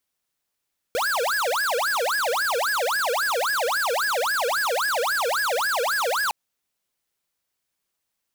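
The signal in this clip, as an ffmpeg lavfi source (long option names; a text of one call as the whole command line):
ffmpeg -f lavfi -i "aevalsrc='0.0668*(2*lt(mod((1076*t-614/(2*PI*3.7)*sin(2*PI*3.7*t)),1),0.5)-1)':duration=5.36:sample_rate=44100" out.wav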